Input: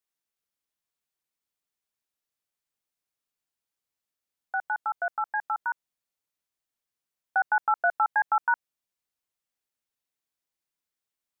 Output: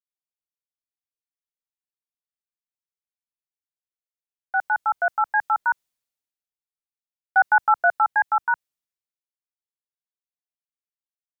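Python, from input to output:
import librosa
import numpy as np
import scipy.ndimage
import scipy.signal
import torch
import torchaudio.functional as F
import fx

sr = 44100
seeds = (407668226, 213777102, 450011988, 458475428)

y = fx.rider(x, sr, range_db=10, speed_s=2.0)
y = fx.band_widen(y, sr, depth_pct=70)
y = F.gain(torch.from_numpy(y), 5.0).numpy()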